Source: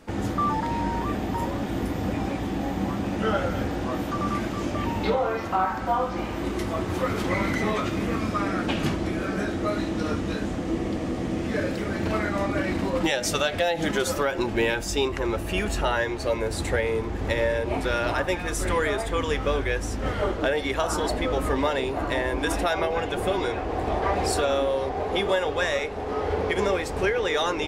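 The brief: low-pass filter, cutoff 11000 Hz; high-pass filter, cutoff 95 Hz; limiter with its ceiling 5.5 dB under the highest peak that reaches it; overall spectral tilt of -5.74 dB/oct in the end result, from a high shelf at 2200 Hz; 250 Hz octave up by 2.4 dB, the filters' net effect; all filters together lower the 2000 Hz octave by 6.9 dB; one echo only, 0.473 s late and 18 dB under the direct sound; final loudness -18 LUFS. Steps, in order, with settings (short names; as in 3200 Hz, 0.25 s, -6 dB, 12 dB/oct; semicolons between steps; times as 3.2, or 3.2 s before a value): HPF 95 Hz; LPF 11000 Hz; bell 250 Hz +3.5 dB; bell 2000 Hz -6.5 dB; high shelf 2200 Hz -5 dB; limiter -17.5 dBFS; echo 0.473 s -18 dB; gain +9.5 dB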